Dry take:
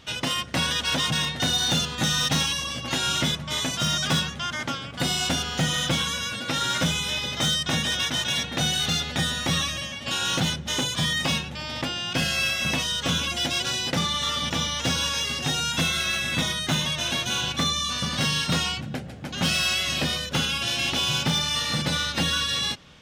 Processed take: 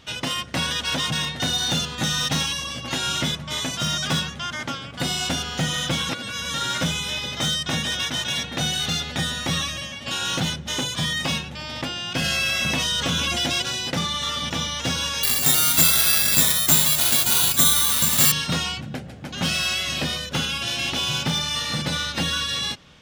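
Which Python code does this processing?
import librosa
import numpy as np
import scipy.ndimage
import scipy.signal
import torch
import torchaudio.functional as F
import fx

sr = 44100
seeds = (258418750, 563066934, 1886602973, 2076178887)

y = fx.env_flatten(x, sr, amount_pct=70, at=(12.24, 13.62))
y = fx.resample_bad(y, sr, factor=6, down='none', up='zero_stuff', at=(15.23, 18.32))
y = fx.edit(y, sr, fx.reverse_span(start_s=6.09, length_s=0.45), tone=tone)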